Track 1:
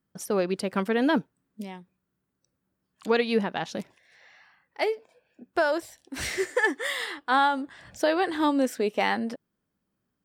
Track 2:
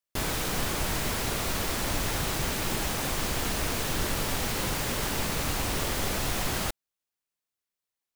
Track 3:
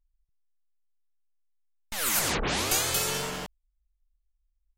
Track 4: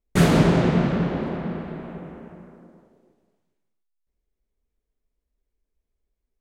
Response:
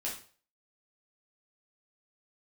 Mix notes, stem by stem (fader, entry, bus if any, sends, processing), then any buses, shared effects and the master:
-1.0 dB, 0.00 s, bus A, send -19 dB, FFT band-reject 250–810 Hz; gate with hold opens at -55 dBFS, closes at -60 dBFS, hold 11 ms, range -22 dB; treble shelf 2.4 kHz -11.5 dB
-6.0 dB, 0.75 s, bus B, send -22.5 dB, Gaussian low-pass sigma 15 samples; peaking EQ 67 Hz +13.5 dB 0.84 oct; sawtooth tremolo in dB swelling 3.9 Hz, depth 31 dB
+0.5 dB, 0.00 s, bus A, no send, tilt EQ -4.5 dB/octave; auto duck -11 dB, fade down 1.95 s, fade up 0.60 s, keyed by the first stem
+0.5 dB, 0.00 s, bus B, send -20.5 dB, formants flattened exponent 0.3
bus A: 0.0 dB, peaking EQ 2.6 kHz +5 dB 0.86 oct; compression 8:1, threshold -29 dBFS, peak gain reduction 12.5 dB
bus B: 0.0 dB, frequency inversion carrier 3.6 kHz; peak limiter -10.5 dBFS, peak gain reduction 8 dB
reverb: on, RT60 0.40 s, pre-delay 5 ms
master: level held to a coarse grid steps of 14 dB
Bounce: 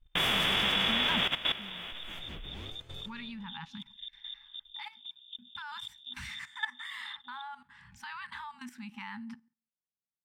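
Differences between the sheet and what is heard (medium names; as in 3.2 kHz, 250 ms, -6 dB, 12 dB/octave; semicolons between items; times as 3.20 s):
stem 2: send off; stem 3 +0.5 dB -> -8.5 dB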